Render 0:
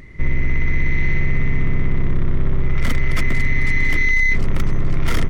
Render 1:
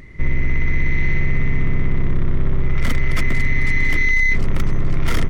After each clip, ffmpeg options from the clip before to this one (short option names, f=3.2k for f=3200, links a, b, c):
-af anull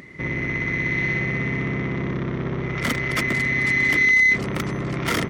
-af "highpass=180,volume=3dB"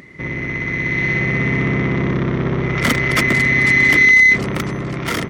-af "dynaudnorm=f=210:g=11:m=6.5dB,volume=1.5dB"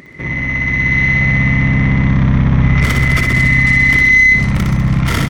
-filter_complex "[0:a]alimiter=limit=-10dB:level=0:latency=1:release=321,asplit=2[a][b];[b]aecho=0:1:60|126|198.6|278.5|366.3:0.631|0.398|0.251|0.158|0.1[c];[a][c]amix=inputs=2:normalize=0,asubboost=boost=5.5:cutoff=150,volume=2dB"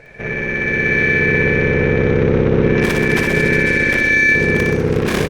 -af "aecho=1:1:362:0.335,aeval=exprs='val(0)*sin(2*PI*290*n/s)':c=same" -ar 48000 -c:a libopus -b:a 64k